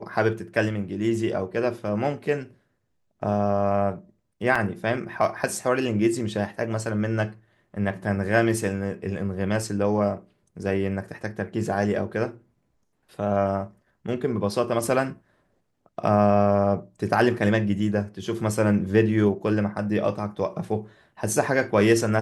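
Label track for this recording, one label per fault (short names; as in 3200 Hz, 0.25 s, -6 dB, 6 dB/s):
4.550000	4.550000	gap 4.7 ms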